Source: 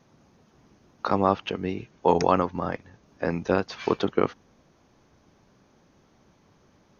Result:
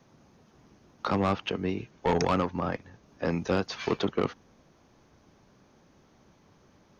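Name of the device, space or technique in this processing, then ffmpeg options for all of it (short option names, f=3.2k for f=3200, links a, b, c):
one-band saturation: -filter_complex "[0:a]acrossover=split=210|3000[a][b][c];[b]asoftclip=type=tanh:threshold=-20.5dB[d];[a][d][c]amix=inputs=3:normalize=0,asettb=1/sr,asplit=3[e][f][g];[e]atrim=end=3.254[h];[f]atrim=start=3.25:end=3.85,asetpts=PTS-STARTPTS,afade=t=in:d=0.004:c=qsin,afade=t=out:st=0.596:d=0.004:c=qsin,highshelf=f=4.9k:g=4.5[i];[g]atrim=start=3.846[j];[h][i]acrossfade=d=0.004:c1=hsin:c2=qsin[k];[k][j]acrossfade=d=0.004:c1=qsin:c2=hsin"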